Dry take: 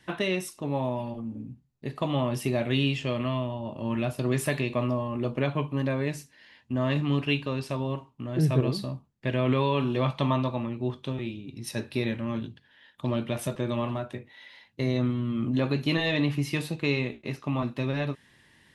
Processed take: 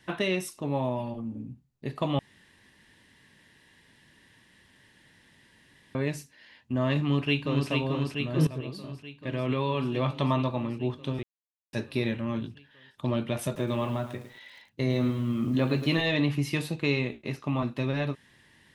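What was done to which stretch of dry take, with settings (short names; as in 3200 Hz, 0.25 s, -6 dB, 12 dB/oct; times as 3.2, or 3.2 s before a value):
2.19–5.95 room tone
7.01–7.7 echo throw 0.44 s, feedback 75%, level -3.5 dB
8.47–10.48 fade in, from -13.5 dB
11.23–11.73 mute
13.45–16.01 lo-fi delay 0.108 s, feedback 35%, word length 8-bit, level -10.5 dB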